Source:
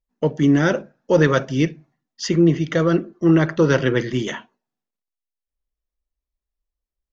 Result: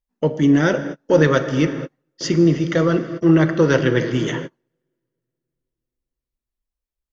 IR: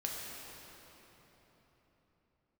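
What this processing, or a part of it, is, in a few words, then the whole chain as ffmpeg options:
keyed gated reverb: -filter_complex "[0:a]asplit=3[a][b][c];[1:a]atrim=start_sample=2205[d];[b][d]afir=irnorm=-1:irlink=0[e];[c]apad=whole_len=314006[f];[e][f]sidechaingate=range=-43dB:threshold=-39dB:ratio=16:detection=peak,volume=-7dB[g];[a][g]amix=inputs=2:normalize=0,volume=-2dB"

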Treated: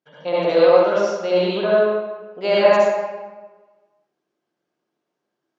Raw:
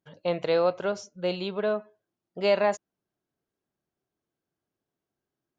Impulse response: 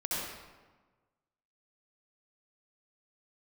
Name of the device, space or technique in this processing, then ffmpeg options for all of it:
supermarket ceiling speaker: -filter_complex "[0:a]highpass=250,lowpass=5.9k[a];[1:a]atrim=start_sample=2205[b];[a][b]afir=irnorm=-1:irlink=0,volume=4dB"

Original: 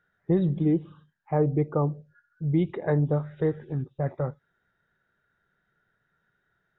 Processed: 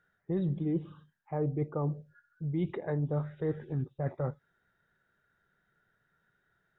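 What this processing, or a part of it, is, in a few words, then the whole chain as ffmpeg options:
compression on the reversed sound: -af "areverse,acompressor=threshold=-27dB:ratio=6,areverse,volume=-1dB"

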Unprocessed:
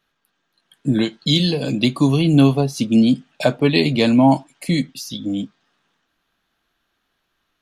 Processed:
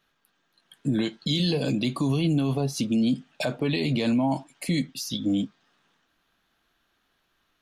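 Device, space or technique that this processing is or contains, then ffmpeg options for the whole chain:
stacked limiters: -af "alimiter=limit=-8.5dB:level=0:latency=1:release=62,alimiter=limit=-13dB:level=0:latency=1:release=36,alimiter=limit=-16.5dB:level=0:latency=1:release=476"

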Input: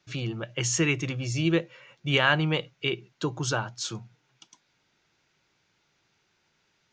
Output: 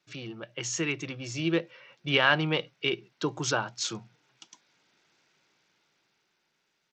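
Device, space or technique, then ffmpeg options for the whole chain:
Bluetooth headset: -af "highpass=180,dynaudnorm=f=260:g=11:m=8dB,aresample=16000,aresample=44100,volume=-5.5dB" -ar 32000 -c:a sbc -b:a 64k

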